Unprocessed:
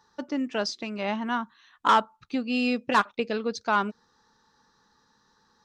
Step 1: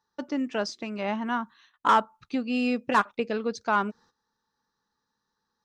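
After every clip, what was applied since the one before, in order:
noise gate −55 dBFS, range −15 dB
dynamic equaliser 4,000 Hz, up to −6 dB, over −45 dBFS, Q 1.2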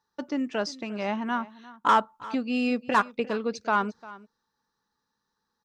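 single-tap delay 350 ms −19 dB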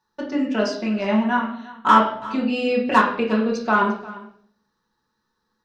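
convolution reverb RT60 0.60 s, pre-delay 5 ms, DRR −3 dB
level +1.5 dB

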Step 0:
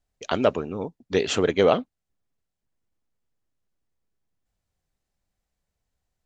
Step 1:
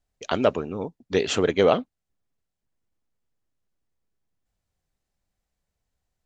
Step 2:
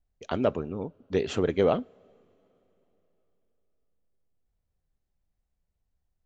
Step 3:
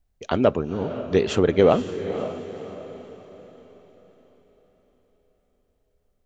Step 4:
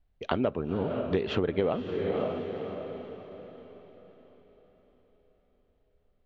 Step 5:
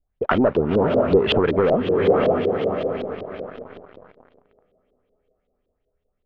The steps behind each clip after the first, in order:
no processing that can be heard
spectral tilt −2 dB per octave; on a send at −21.5 dB: convolution reverb, pre-delay 3 ms; on the sum: level −6.5 dB
feedback delay with all-pass diffusion 513 ms, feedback 44%, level −11 dB; level +6.5 dB
low-pass filter 3,900 Hz 24 dB per octave; downward compressor 6 to 1, threshold −24 dBFS, peak gain reduction 12.5 dB
leveller curve on the samples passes 3; auto-filter low-pass saw up 5.3 Hz 400–4,000 Hz

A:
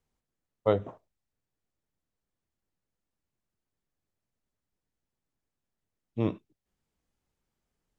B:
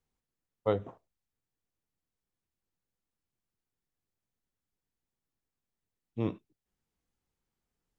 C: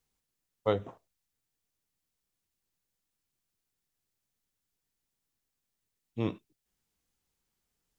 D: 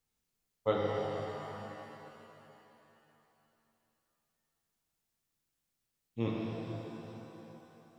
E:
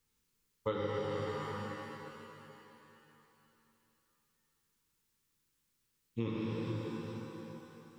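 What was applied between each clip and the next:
notch filter 610 Hz, Q 12; level −3.5 dB
high-shelf EQ 2,200 Hz +8.5 dB
reverb with rising layers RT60 3.2 s, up +7 semitones, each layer −8 dB, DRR −3 dB; level −4.5 dB
Butterworth band-reject 680 Hz, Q 2.3; downward compressor 4 to 1, threshold −38 dBFS, peak gain reduction 10.5 dB; level +5 dB

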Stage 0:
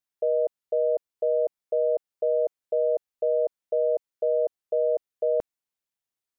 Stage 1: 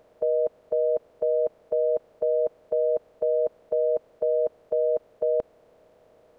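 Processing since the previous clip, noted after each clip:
compressor on every frequency bin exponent 0.4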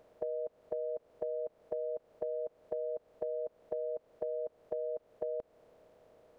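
downward compressor, threshold −30 dBFS, peak gain reduction 10 dB
level −4.5 dB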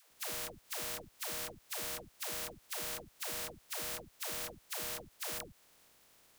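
compressing power law on the bin magnitudes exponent 0.15
all-pass dispersion lows, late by 117 ms, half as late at 440 Hz
level −3 dB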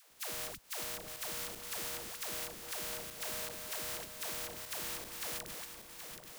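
feedback delay that plays each chunk backwards 388 ms, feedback 61%, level −7 dB
in parallel at 0 dB: downward compressor, threshold −48 dBFS, peak gain reduction 11.5 dB
on the sum: level −3 dB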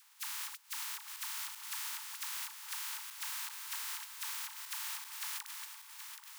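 linear-phase brick-wall high-pass 810 Hz

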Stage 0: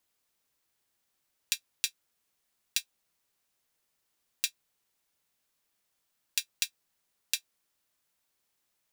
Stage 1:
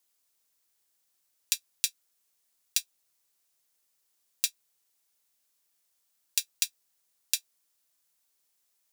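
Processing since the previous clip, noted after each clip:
bass and treble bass −5 dB, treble +8 dB
level −3 dB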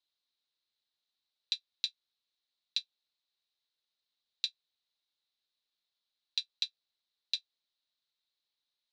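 transistor ladder low-pass 4,200 Hz, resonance 75%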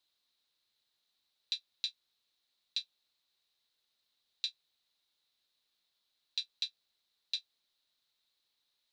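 brickwall limiter −27.5 dBFS, peak gain reduction 11 dB
level +6.5 dB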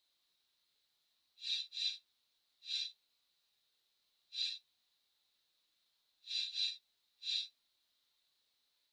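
random phases in long frames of 200 ms
level +1 dB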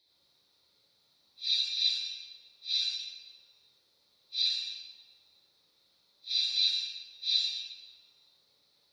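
convolution reverb RT60 1.0 s, pre-delay 58 ms, DRR −5.5 dB

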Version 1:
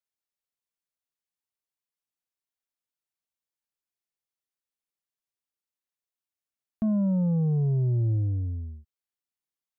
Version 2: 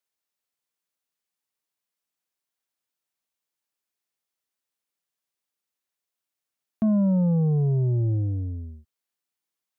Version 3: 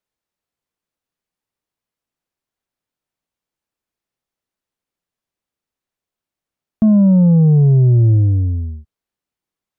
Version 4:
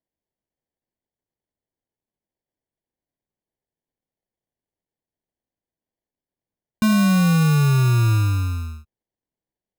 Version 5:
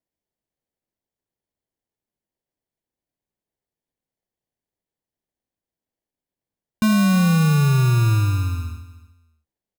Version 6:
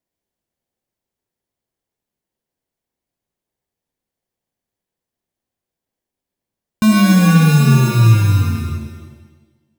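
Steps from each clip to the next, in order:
high-pass filter 150 Hz 6 dB per octave; level +5.5 dB
spectral tilt −2.5 dB per octave; level +4.5 dB
decimation without filtering 34×; level −6 dB
repeating echo 304 ms, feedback 18%, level −16 dB
reverb with rising layers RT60 1.1 s, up +7 semitones, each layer −8 dB, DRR 4.5 dB; level +4 dB

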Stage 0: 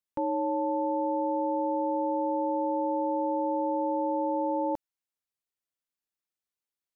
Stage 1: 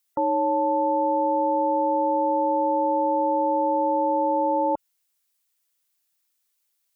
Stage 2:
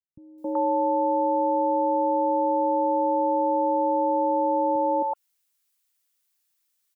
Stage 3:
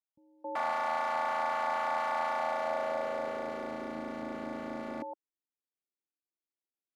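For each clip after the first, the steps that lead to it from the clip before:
gate on every frequency bin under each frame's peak −30 dB strong; spectral tilt +3 dB per octave; level +8.5 dB
three-band delay without the direct sound lows, mids, highs 270/380 ms, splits 190/590 Hz
wrap-around overflow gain 18.5 dB; band-pass filter sweep 870 Hz → 320 Hz, 0:02.25–0:03.96; level −1 dB

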